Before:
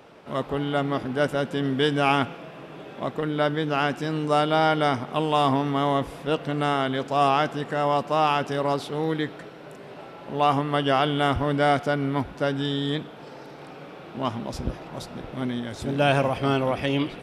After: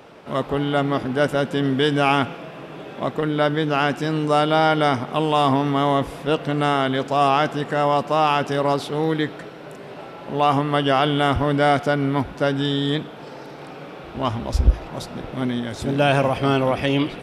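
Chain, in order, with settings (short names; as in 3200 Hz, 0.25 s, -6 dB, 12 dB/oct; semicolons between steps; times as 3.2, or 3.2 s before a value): 14.04–14.89 resonant low shelf 100 Hz +13.5 dB, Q 1.5; in parallel at -3 dB: limiter -15.5 dBFS, peak gain reduction 10 dB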